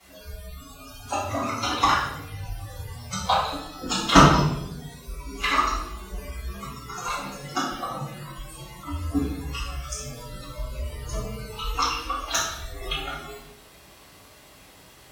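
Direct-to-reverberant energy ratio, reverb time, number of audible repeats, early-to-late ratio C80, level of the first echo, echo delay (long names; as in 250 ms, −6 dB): −13.0 dB, 0.85 s, no echo audible, 5.0 dB, no echo audible, no echo audible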